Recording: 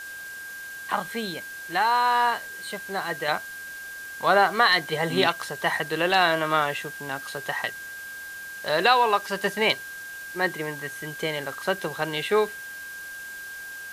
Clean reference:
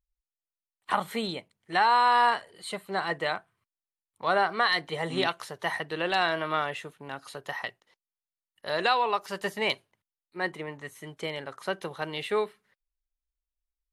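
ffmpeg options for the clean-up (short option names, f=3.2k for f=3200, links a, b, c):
-af "bandreject=f=1.6k:w=30,afwtdn=0.0056,asetnsamples=n=441:p=0,asendcmd='3.28 volume volume -5.5dB',volume=0dB"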